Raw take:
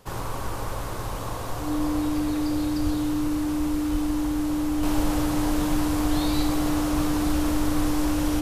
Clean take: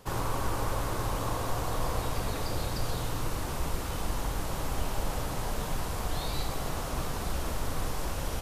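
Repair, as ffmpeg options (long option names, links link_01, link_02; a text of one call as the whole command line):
ffmpeg -i in.wav -filter_complex "[0:a]bandreject=frequency=300:width=30,asplit=3[link_01][link_02][link_03];[link_01]afade=type=out:start_time=2.83:duration=0.02[link_04];[link_02]highpass=frequency=140:width=0.5412,highpass=frequency=140:width=1.3066,afade=type=in:start_time=2.83:duration=0.02,afade=type=out:start_time=2.95:duration=0.02[link_05];[link_03]afade=type=in:start_time=2.95:duration=0.02[link_06];[link_04][link_05][link_06]amix=inputs=3:normalize=0,asplit=3[link_07][link_08][link_09];[link_07]afade=type=out:start_time=3.91:duration=0.02[link_10];[link_08]highpass=frequency=140:width=0.5412,highpass=frequency=140:width=1.3066,afade=type=in:start_time=3.91:duration=0.02,afade=type=out:start_time=4.03:duration=0.02[link_11];[link_09]afade=type=in:start_time=4.03:duration=0.02[link_12];[link_10][link_11][link_12]amix=inputs=3:normalize=0,asetnsamples=nb_out_samples=441:pad=0,asendcmd='4.83 volume volume -5.5dB',volume=0dB" out.wav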